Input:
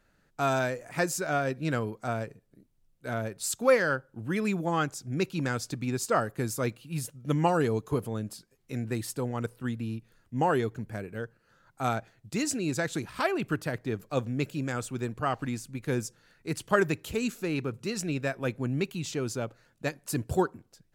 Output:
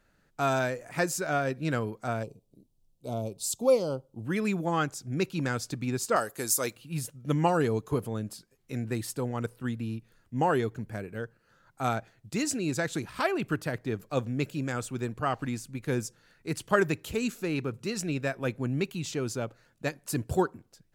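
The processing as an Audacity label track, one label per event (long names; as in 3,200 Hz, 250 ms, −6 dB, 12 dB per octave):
2.230000	4.250000	Butterworth band-reject 1,700 Hz, Q 0.81
6.160000	6.760000	bass and treble bass −12 dB, treble +12 dB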